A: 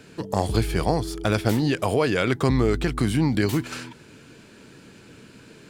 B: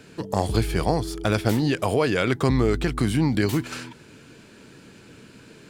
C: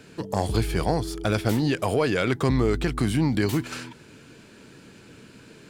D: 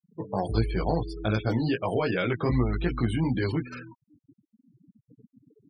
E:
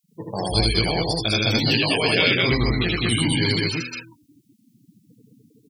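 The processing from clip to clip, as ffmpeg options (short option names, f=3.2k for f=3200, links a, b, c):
-af anull
-af "acontrast=59,volume=-7dB"
-af "flanger=delay=16:depth=2.4:speed=2.7,afftfilt=real='re*gte(hypot(re,im),0.02)':imag='im*gte(hypot(re,im),0.02)':win_size=1024:overlap=0.75"
-af "aexciter=amount=7.4:drive=3.9:freq=2.1k,aecho=1:1:78.72|204.1:0.891|0.891"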